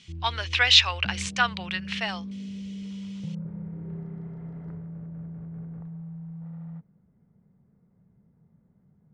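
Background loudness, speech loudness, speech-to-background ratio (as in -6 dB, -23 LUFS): -38.0 LUFS, -22.5 LUFS, 15.5 dB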